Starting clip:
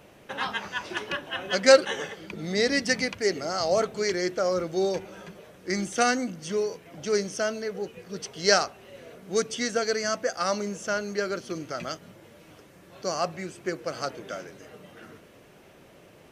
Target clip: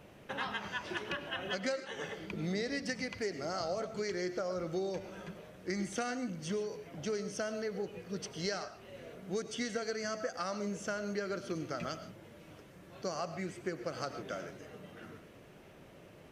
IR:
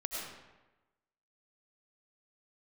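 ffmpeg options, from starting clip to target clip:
-filter_complex "[0:a]acompressor=threshold=-29dB:ratio=10,bass=frequency=250:gain=4,treble=frequency=4000:gain=-3,asplit=2[link_01][link_02];[1:a]atrim=start_sample=2205,afade=type=out:start_time=0.21:duration=0.01,atrim=end_sample=9702[link_03];[link_02][link_03]afir=irnorm=-1:irlink=0,volume=-7.5dB[link_04];[link_01][link_04]amix=inputs=2:normalize=0,volume=-6.5dB"

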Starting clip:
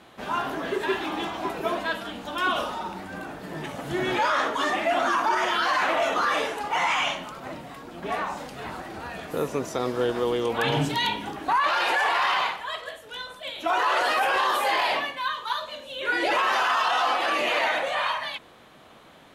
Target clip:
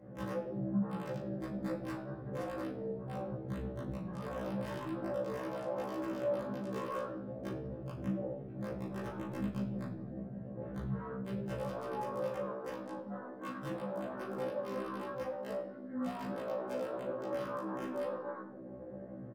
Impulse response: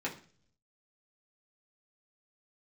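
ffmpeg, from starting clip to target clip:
-filter_complex "[0:a]asoftclip=type=hard:threshold=-26.5dB,highpass=160,lowpass=4600,atempo=2,acompressor=threshold=-43dB:ratio=16,asplit=2[link_01][link_02];[link_02]adelay=373,lowpass=frequency=1400:poles=1,volume=-8dB,asplit=2[link_03][link_04];[link_04]adelay=373,lowpass=frequency=1400:poles=1,volume=0.37,asplit=2[link_05][link_06];[link_06]adelay=373,lowpass=frequency=1400:poles=1,volume=0.37,asplit=2[link_07][link_08];[link_08]adelay=373,lowpass=frequency=1400:poles=1,volume=0.37[link_09];[link_01][link_03][link_05][link_07][link_09]amix=inputs=5:normalize=0,afwtdn=0.00447,afreqshift=-20,asetrate=22050,aresample=44100,aeval=exprs='(mod(70.8*val(0)+1,2)-1)/70.8':channel_layout=same,asplit=2[link_10][link_11];[link_11]adelay=40,volume=-10.5dB[link_12];[link_10][link_12]amix=inputs=2:normalize=0[link_13];[1:a]atrim=start_sample=2205,asetrate=30870,aresample=44100[link_14];[link_13][link_14]afir=irnorm=-1:irlink=0,afftfilt=real='re*1.73*eq(mod(b,3),0)':imag='im*1.73*eq(mod(b,3),0)':win_size=2048:overlap=0.75,volume=1dB"

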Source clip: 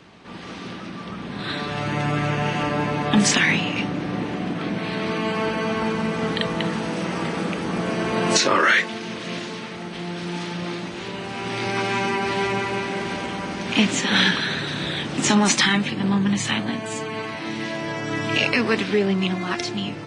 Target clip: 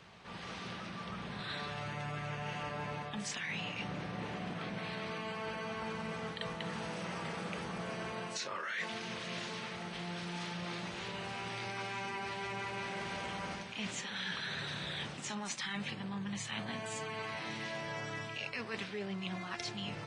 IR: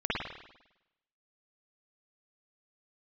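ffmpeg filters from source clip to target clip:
-af "equalizer=frequency=290:width_type=o:width=0.81:gain=-11.5,areverse,acompressor=threshold=-30dB:ratio=12,areverse,volume=-6.5dB"

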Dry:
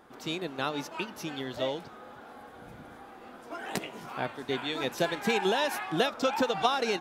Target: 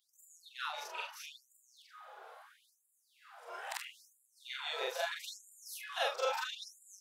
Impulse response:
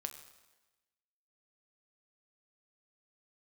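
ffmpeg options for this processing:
-af "afftfilt=real='re':imag='-im':win_size=4096:overlap=0.75,afftfilt=real='re*gte(b*sr/1024,370*pow(7000/370,0.5+0.5*sin(2*PI*0.76*pts/sr)))':imag='im*gte(b*sr/1024,370*pow(7000/370,0.5+0.5*sin(2*PI*0.76*pts/sr)))':win_size=1024:overlap=0.75"

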